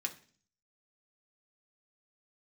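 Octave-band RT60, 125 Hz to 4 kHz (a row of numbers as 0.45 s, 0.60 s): 0.70 s, 0.65 s, 0.50 s, 0.40 s, 0.45 s, 0.50 s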